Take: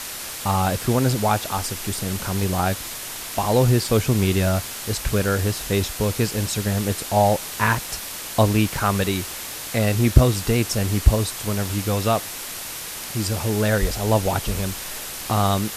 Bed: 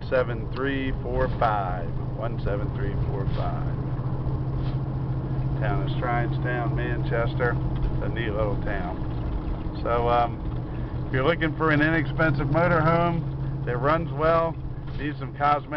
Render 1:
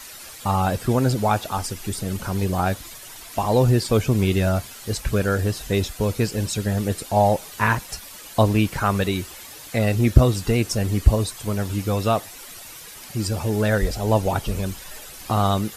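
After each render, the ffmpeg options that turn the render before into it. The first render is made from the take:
-af "afftdn=nr=11:nf=-33"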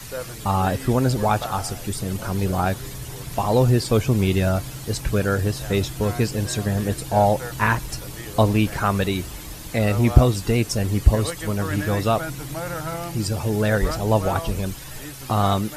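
-filter_complex "[1:a]volume=0.355[s0];[0:a][s0]amix=inputs=2:normalize=0"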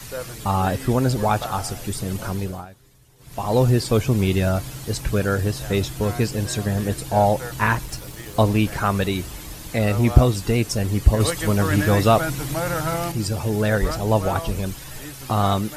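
-filter_complex "[0:a]asettb=1/sr,asplit=3[s0][s1][s2];[s0]atrim=end=7.844[s3];[s1]atrim=start=7.84:end=8.41,asetpts=PTS-STARTPTS,afade=t=in:d=0.004:c=qsin,afade=t=out:st=0.566:d=0.004:c=qsin,aeval=exprs='sgn(val(0))*max(abs(val(0))-0.00473,0)':c=same[s4];[s2]atrim=start=8.406[s5];[s3][s4]acrossfade=d=0.004:c1=hsin:c2=qsin[s6];[s6][s5]acrossfade=d=0.004:c1=qsin:c2=hsin,asettb=1/sr,asplit=3[s7][s8][s9];[s7]atrim=end=11.204[s10];[s8]atrim=start=11.2:end=13.12,asetpts=PTS-STARTPTS,afade=t=in:d=0.004:c=qsin,afade=t=out:st=1.916:d=0.004:c=qsin,acontrast=24[s11];[s9]atrim=start=13.116[s12];[s10][s11]acrossfade=d=0.004:c1=hsin:c2=qsin[s13];[s13][s12]acrossfade=d=0.004:c1=qsin:c2=hsin,asplit=3[s14][s15][s16];[s14]atrim=end=2.67,asetpts=PTS-STARTPTS,afade=t=out:st=2.27:d=0.4:silence=0.0891251[s17];[s15]atrim=start=2.67:end=3.18,asetpts=PTS-STARTPTS,volume=0.0891[s18];[s16]atrim=start=3.18,asetpts=PTS-STARTPTS,afade=t=in:d=0.4:silence=0.0891251[s19];[s17][s18][s19]concat=n=3:v=0:a=1"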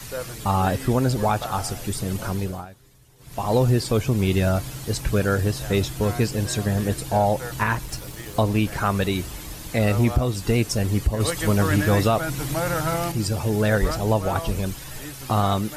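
-af "alimiter=limit=0.316:level=0:latency=1:release=306"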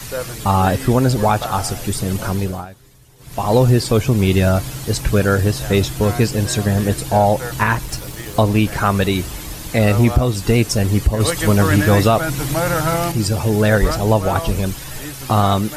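-af "volume=2"

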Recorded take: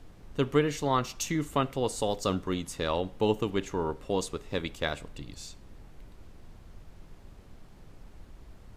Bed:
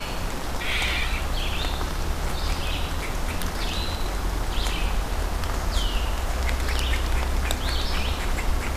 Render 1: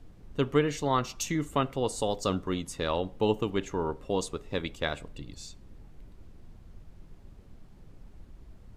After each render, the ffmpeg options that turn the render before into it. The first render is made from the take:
-af "afftdn=nr=6:nf=-52"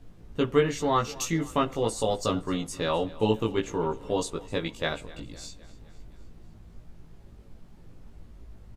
-filter_complex "[0:a]asplit=2[s0][s1];[s1]adelay=18,volume=0.794[s2];[s0][s2]amix=inputs=2:normalize=0,aecho=1:1:257|514|771|1028|1285:0.1|0.058|0.0336|0.0195|0.0113"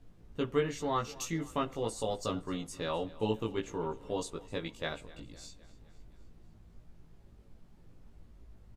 -af "volume=0.422"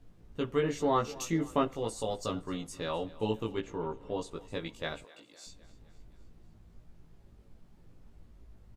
-filter_complex "[0:a]asettb=1/sr,asplit=3[s0][s1][s2];[s0]atrim=end=0.634[s3];[s1]atrim=start=0.63:end=1.68,asetpts=PTS-STARTPTS,afade=t=in:d=0.004:c=qsin,afade=t=out:st=1.046:d=0.004:c=qsin,equalizer=f=420:w=0.48:g=6.5[s4];[s2]atrim=start=1.676[s5];[s3][s4]acrossfade=d=0.004:c1=hsin:c2=qsin[s6];[s6][s5]acrossfade=d=0.004:c1=qsin:c2=hsin,asettb=1/sr,asplit=3[s7][s8][s9];[s7]atrim=end=3.614[s10];[s8]atrim=start=3.61:end=4.31,asetpts=PTS-STARTPTS,afade=t=in:d=0.004:c=qsin,afade=t=out:st=0.696:d=0.004:c=qsin,highshelf=f=5000:g=-11[s11];[s9]atrim=start=4.306[s12];[s10][s11]acrossfade=d=0.004:c1=hsin:c2=qsin[s13];[s13][s12]acrossfade=d=0.004:c1=qsin:c2=hsin,asettb=1/sr,asplit=3[s14][s15][s16];[s14]atrim=end=5.044[s17];[s15]atrim=start=5.04:end=5.47,asetpts=PTS-STARTPTS,afade=t=in:d=0.004:c=qsin,afade=t=out:st=0.426:d=0.004:c=qsin,highpass=460[s18];[s16]atrim=start=5.466[s19];[s17][s18]acrossfade=d=0.004:c1=hsin:c2=qsin[s20];[s20][s19]acrossfade=d=0.004:c1=qsin:c2=hsin"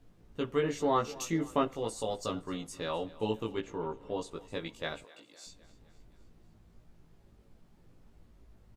-af "lowshelf=f=130:g=-5"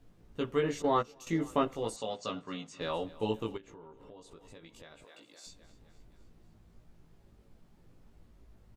-filter_complex "[0:a]asettb=1/sr,asplit=3[s0][s1][s2];[s0]atrim=end=0.824[s3];[s1]atrim=start=0.82:end=1.27,asetpts=PTS-STARTPTS,afade=t=in:d=0.004:c=qsin,afade=t=out:st=0.446:d=0.004:c=qsin,agate=range=0.224:threshold=0.0282:ratio=16:release=100:detection=peak[s4];[s2]atrim=start=1.266[s5];[s3][s4]acrossfade=d=0.004:c1=hsin:c2=qsin[s6];[s6][s5]acrossfade=d=0.004:c1=qsin:c2=hsin,asettb=1/sr,asplit=3[s7][s8][s9];[s7]atrim=end=1.964[s10];[s8]atrim=start=1.96:end=2.81,asetpts=PTS-STARTPTS,afade=t=in:d=0.004:c=qsin,afade=t=out:st=0.846:d=0.004:c=qsin,highpass=160,equalizer=f=340:t=q:w=4:g=-9,equalizer=f=490:t=q:w=4:g=-3,equalizer=f=870:t=q:w=4:g=-3,equalizer=f=2600:t=q:w=4:g=4,equalizer=f=5100:t=q:w=4:g=-4,lowpass=f=6400:w=0.5412,lowpass=f=6400:w=1.3066[s11];[s9]atrim=start=2.806[s12];[s10][s11]acrossfade=d=0.004:c1=hsin:c2=qsin[s13];[s13][s12]acrossfade=d=0.004:c1=qsin:c2=hsin,asplit=3[s14][s15][s16];[s14]afade=t=out:st=3.56:d=0.02[s17];[s15]acompressor=threshold=0.00355:ratio=6:attack=3.2:release=140:knee=1:detection=peak,afade=t=in:st=3.56:d=0.02,afade=t=out:st=5.43:d=0.02[s18];[s16]afade=t=in:st=5.43:d=0.02[s19];[s17][s18][s19]amix=inputs=3:normalize=0"

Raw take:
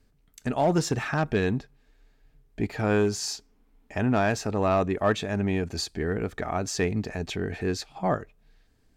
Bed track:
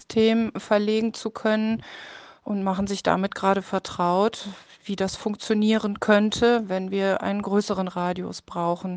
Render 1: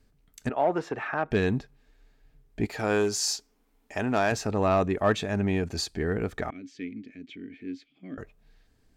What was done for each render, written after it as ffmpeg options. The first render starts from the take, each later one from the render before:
-filter_complex "[0:a]asettb=1/sr,asplit=3[s0][s1][s2];[s0]atrim=end=0.494[s3];[s1]atrim=start=0.49:end=1.31,asetpts=PTS-STARTPTS,afade=t=in:d=0.004:c=qsin,afade=t=out:st=0.816:d=0.004:c=qsin,acrossover=split=320 2700:gain=0.158 1 0.0794[s4][s5][s6];[s4][s5][s6]amix=inputs=3:normalize=0[s7];[s2]atrim=start=1.306[s8];[s3][s7]acrossfade=d=0.004:c1=hsin:c2=qsin[s9];[s9][s8]acrossfade=d=0.004:c1=qsin:c2=hsin,asettb=1/sr,asplit=3[s10][s11][s12];[s10]atrim=end=2.654[s13];[s11]atrim=start=2.65:end=4.32,asetpts=PTS-STARTPTS,afade=t=in:d=0.004:c=qsin,afade=t=out:st=1.666:d=0.004:c=qsin,bass=f=250:g=-8,treble=f=4000:g=5[s14];[s12]atrim=start=4.316[s15];[s13][s14]acrossfade=d=0.004:c1=hsin:c2=qsin[s16];[s16][s15]acrossfade=d=0.004:c1=qsin:c2=hsin,asettb=1/sr,asplit=3[s17][s18][s19];[s17]atrim=end=6.504[s20];[s18]atrim=start=6.5:end=8.18,asetpts=PTS-STARTPTS,afade=t=in:d=0.004:c=qsin,afade=t=out:st=1.676:d=0.004:c=qsin,asplit=3[s21][s22][s23];[s21]bandpass=f=270:t=q:w=8,volume=1[s24];[s22]bandpass=f=2290:t=q:w=8,volume=0.501[s25];[s23]bandpass=f=3010:t=q:w=8,volume=0.355[s26];[s24][s25][s26]amix=inputs=3:normalize=0[s27];[s19]atrim=start=8.176[s28];[s20][s27]acrossfade=d=0.004:c1=hsin:c2=qsin[s29];[s29][s28]acrossfade=d=0.004:c1=qsin:c2=hsin"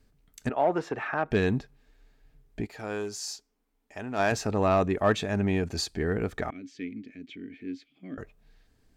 -filter_complex "[0:a]asplit=3[s0][s1][s2];[s0]atrim=end=2.81,asetpts=PTS-STARTPTS,afade=t=out:st=2.6:d=0.21:c=exp:silence=0.375837[s3];[s1]atrim=start=2.81:end=3.99,asetpts=PTS-STARTPTS,volume=0.376[s4];[s2]atrim=start=3.99,asetpts=PTS-STARTPTS,afade=t=in:d=0.21:c=exp:silence=0.375837[s5];[s3][s4][s5]concat=n=3:v=0:a=1"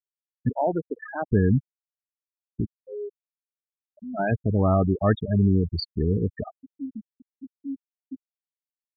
-af "afftfilt=real='re*gte(hypot(re,im),0.126)':imag='im*gte(hypot(re,im),0.126)':win_size=1024:overlap=0.75,bass=f=250:g=10,treble=f=4000:g=5"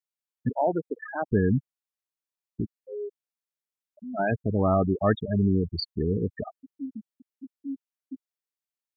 -af "lowshelf=f=110:g=-9.5"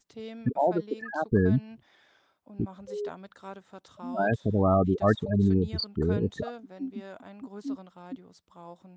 -filter_complex "[1:a]volume=0.0841[s0];[0:a][s0]amix=inputs=2:normalize=0"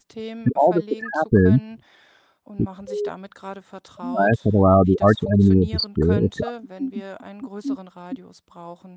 -af "volume=2.51,alimiter=limit=0.708:level=0:latency=1"

